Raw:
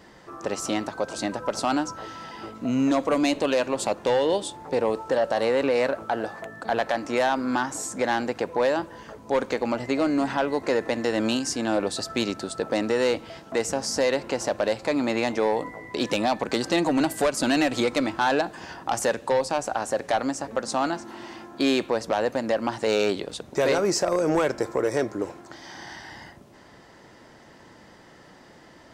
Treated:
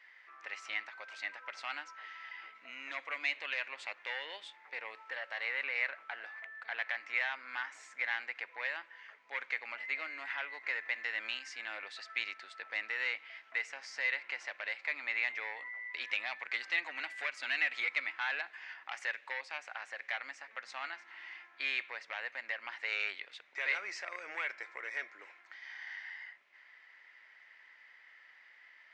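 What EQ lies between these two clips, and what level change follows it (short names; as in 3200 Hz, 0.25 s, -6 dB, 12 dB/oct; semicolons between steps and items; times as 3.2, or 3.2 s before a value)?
resonant high-pass 2100 Hz, resonance Q 4.5; tape spacing loss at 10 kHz 32 dB; -3.5 dB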